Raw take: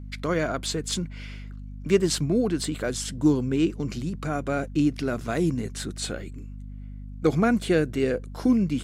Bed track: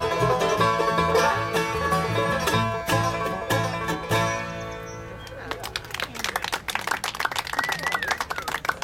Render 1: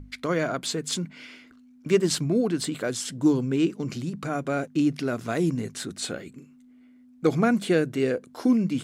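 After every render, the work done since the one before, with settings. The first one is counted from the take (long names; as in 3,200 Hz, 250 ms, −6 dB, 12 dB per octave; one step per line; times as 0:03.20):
mains-hum notches 50/100/150/200 Hz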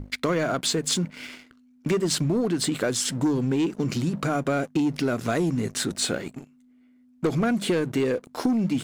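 leveller curve on the samples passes 2
downward compressor, threshold −21 dBFS, peak gain reduction 9 dB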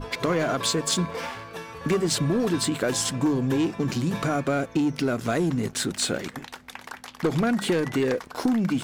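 mix in bed track −13.5 dB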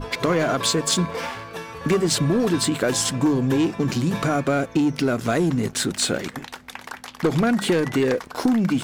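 level +3.5 dB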